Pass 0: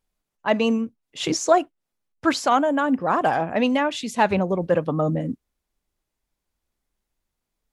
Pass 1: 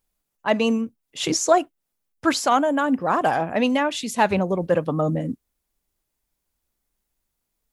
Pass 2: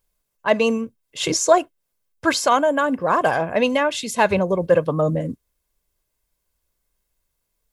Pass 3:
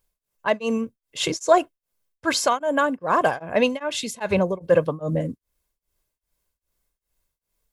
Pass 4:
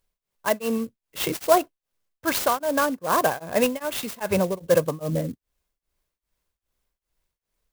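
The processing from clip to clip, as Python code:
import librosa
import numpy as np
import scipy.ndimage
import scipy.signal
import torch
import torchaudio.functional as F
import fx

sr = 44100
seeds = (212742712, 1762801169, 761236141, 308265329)

y1 = fx.high_shelf(x, sr, hz=8700.0, db=11.0)
y2 = y1 + 0.4 * np.pad(y1, (int(1.9 * sr / 1000.0), 0))[:len(y1)]
y2 = y2 * librosa.db_to_amplitude(2.0)
y3 = y2 * np.abs(np.cos(np.pi * 2.5 * np.arange(len(y2)) / sr))
y4 = fx.clock_jitter(y3, sr, seeds[0], jitter_ms=0.047)
y4 = y4 * librosa.db_to_amplitude(-1.5)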